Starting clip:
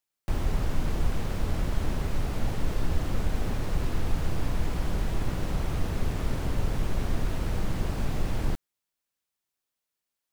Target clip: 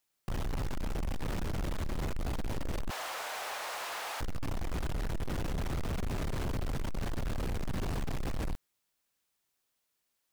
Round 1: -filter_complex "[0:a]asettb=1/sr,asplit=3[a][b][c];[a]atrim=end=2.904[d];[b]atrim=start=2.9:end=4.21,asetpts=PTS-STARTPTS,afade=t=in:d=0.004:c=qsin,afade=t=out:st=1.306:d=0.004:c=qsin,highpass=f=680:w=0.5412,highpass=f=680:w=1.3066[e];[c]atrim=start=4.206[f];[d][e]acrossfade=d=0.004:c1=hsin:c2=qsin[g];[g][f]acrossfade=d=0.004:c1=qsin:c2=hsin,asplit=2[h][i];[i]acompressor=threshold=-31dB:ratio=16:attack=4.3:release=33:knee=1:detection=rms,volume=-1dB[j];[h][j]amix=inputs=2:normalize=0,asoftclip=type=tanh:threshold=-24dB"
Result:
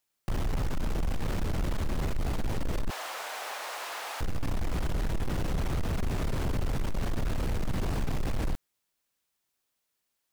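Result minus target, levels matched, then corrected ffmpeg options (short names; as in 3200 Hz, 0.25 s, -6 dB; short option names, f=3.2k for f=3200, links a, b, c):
soft clip: distortion -4 dB
-filter_complex "[0:a]asettb=1/sr,asplit=3[a][b][c];[a]atrim=end=2.904[d];[b]atrim=start=2.9:end=4.21,asetpts=PTS-STARTPTS,afade=t=in:d=0.004:c=qsin,afade=t=out:st=1.306:d=0.004:c=qsin,highpass=f=680:w=0.5412,highpass=f=680:w=1.3066[e];[c]atrim=start=4.206[f];[d][e]acrossfade=d=0.004:c1=hsin:c2=qsin[g];[g][f]acrossfade=d=0.004:c1=qsin:c2=hsin,asplit=2[h][i];[i]acompressor=threshold=-31dB:ratio=16:attack=4.3:release=33:knee=1:detection=rms,volume=-1dB[j];[h][j]amix=inputs=2:normalize=0,asoftclip=type=tanh:threshold=-30.5dB"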